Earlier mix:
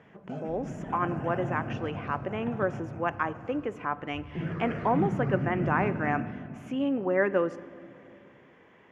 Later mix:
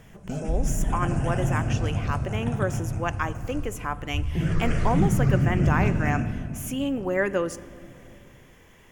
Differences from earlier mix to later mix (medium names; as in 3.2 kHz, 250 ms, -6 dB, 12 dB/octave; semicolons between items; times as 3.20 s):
background +3.5 dB; master: remove band-pass 180–2000 Hz